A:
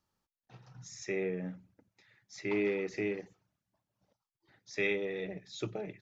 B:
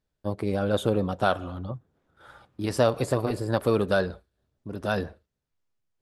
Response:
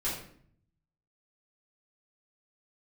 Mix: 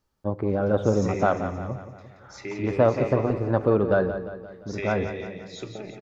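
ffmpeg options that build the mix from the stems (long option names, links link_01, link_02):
-filter_complex "[0:a]acompressor=threshold=-34dB:ratio=6,volume=1.5dB,asplit=3[link_01][link_02][link_03];[link_02]volume=-12.5dB[link_04];[link_03]volume=-5.5dB[link_05];[1:a]lowpass=1400,volume=2dB,asplit=3[link_06][link_07][link_08];[link_07]volume=-23.5dB[link_09];[link_08]volume=-10.5dB[link_10];[2:a]atrim=start_sample=2205[link_11];[link_04][link_09]amix=inputs=2:normalize=0[link_12];[link_12][link_11]afir=irnorm=-1:irlink=0[link_13];[link_05][link_10]amix=inputs=2:normalize=0,aecho=0:1:174|348|522|696|870|1044|1218:1|0.51|0.26|0.133|0.0677|0.0345|0.0176[link_14];[link_01][link_06][link_13][link_14]amix=inputs=4:normalize=0"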